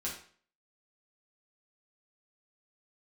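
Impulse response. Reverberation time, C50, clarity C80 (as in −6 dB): 0.45 s, 5.5 dB, 10.0 dB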